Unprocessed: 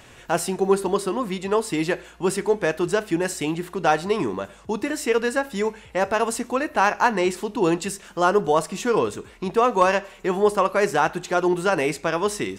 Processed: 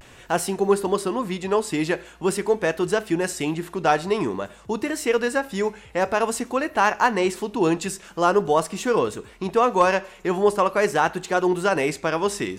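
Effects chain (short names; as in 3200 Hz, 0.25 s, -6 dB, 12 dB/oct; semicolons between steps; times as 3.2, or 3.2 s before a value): vibrato 0.47 Hz 43 cents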